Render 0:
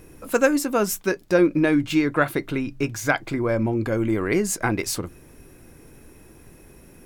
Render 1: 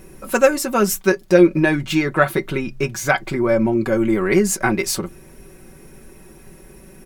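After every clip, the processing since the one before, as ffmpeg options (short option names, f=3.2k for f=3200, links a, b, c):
-af "aecho=1:1:5.3:0.67,volume=3dB"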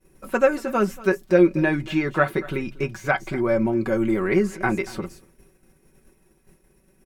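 -filter_complex "[0:a]aecho=1:1:234:0.106,acrossover=split=3000[a][b];[b]acompressor=threshold=-41dB:ratio=4:attack=1:release=60[c];[a][c]amix=inputs=2:normalize=0,agate=range=-33dB:threshold=-33dB:ratio=3:detection=peak,volume=-4dB"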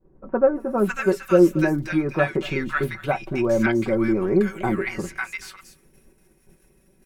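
-filter_complex "[0:a]acrossover=split=1200[a][b];[b]adelay=550[c];[a][c]amix=inputs=2:normalize=0,volume=1dB"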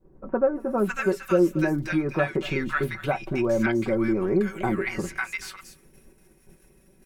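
-af "acompressor=threshold=-29dB:ratio=1.5,volume=1.5dB"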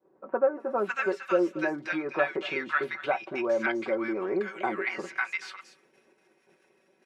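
-af "highpass=470,lowpass=4.1k"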